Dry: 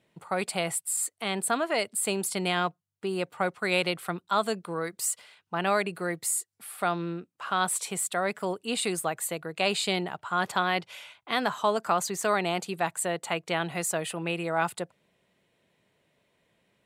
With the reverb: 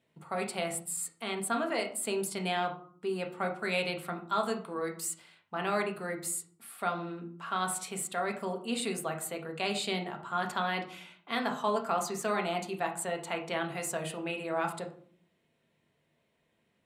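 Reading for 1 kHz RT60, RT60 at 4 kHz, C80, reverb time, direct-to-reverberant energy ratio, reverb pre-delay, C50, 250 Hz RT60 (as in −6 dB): 0.50 s, 0.30 s, 15.0 dB, 0.55 s, 2.5 dB, 4 ms, 10.5 dB, 0.80 s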